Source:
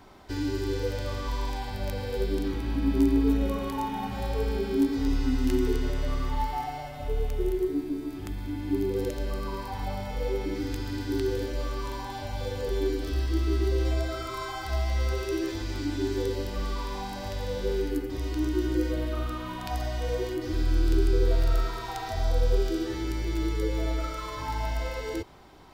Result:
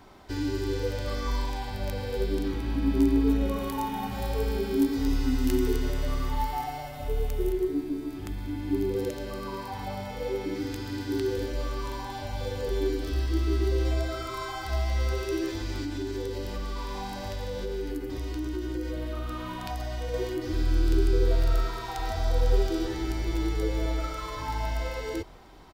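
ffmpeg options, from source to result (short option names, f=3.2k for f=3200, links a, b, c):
-filter_complex "[0:a]asettb=1/sr,asplit=3[a][b][c];[a]atrim=end=1.044[d];[b]atrim=start=1.04:end=1.44,asetpts=PTS-STARTPTS,afade=t=in:d=0.004:c=qsin,afade=t=out:st=0.396:d=0.004:c=qsin,asplit=2[e][f];[f]adelay=37,volume=-3.5dB[g];[e][g]amix=inputs=2:normalize=0,atrim=end_sample=17640[h];[c]atrim=start=1.436[i];[d][h]acrossfade=d=0.004:c1=hsin:c2=qsin[j];[j][i]acrossfade=d=0.004:c1=qsin:c2=hsin,asettb=1/sr,asplit=3[k][l][m];[k]atrim=end=3.564[n];[l]atrim=start=3.56:end=7.52,asetpts=PTS-STARTPTS,afade=t=in:d=0.004:c=qsin,afade=t=out:st=3.956:d=0.004:c=qsin,highshelf=f=8.9k:g=9[o];[m]atrim=start=7.516[p];[n][o]acrossfade=d=0.004:c1=hsin:c2=qsin[q];[q][p]acrossfade=d=0.004:c1=qsin:c2=hsin,asettb=1/sr,asplit=3[r][s][t];[r]atrim=end=8.954[u];[s]atrim=start=8.95:end=11.38,asetpts=PTS-STARTPTS,afade=t=in:d=0.004:c=qsin,afade=t=out:st=2.426:d=0.004:c=qsin,highpass=84[v];[t]atrim=start=11.376[w];[u][v]acrossfade=d=0.004:c1=hsin:c2=qsin[x];[x][w]acrossfade=d=0.004:c1=qsin:c2=hsin,asettb=1/sr,asplit=3[y][z][aa];[y]atrim=end=15.824[ab];[z]atrim=start=15.82:end=20.14,asetpts=PTS-STARTPTS,afade=t=in:d=0.004:c=qsin,afade=t=out:st=4.316:d=0.004:c=qsin,acompressor=threshold=-29dB:ratio=3:attack=3.2:release=140:knee=1:detection=peak[ac];[aa]atrim=start=20.136[ad];[ab][ac]acrossfade=d=0.004:c1=hsin:c2=qsin[ae];[ae][ad]acrossfade=d=0.004:c1=qsin:c2=hsin,asplit=2[af][ag];[ag]afade=t=in:st=21.48:d=0.01,afade=t=out:st=22.37:d=0.01,aecho=0:1:500|1000|1500|2000|2500|3000|3500|4000|4500:0.334965|0.217728|0.141523|0.0919899|0.0597934|0.0388657|0.0252627|0.0164208|0.0106735[ah];[af][ah]amix=inputs=2:normalize=0"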